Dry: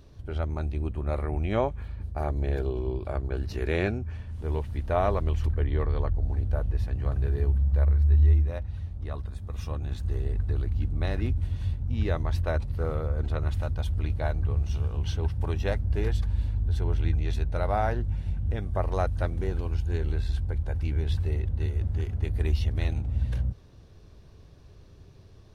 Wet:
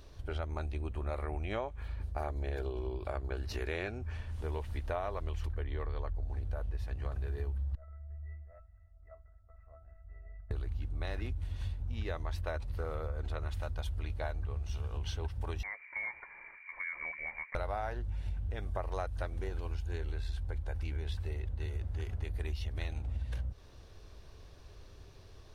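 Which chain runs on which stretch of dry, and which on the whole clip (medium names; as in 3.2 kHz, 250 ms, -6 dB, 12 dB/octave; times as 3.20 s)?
7.75–10.51 s: steep low-pass 2.1 kHz 72 dB/octave + feedback comb 660 Hz, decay 0.22 s, mix 100%
15.63–17.55 s: steep high-pass 270 Hz + compression 5:1, threshold -37 dBFS + frequency inversion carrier 2.6 kHz
whole clip: peaking EQ 160 Hz -11.5 dB 2.2 oct; compression, threshold -36 dBFS; trim +3 dB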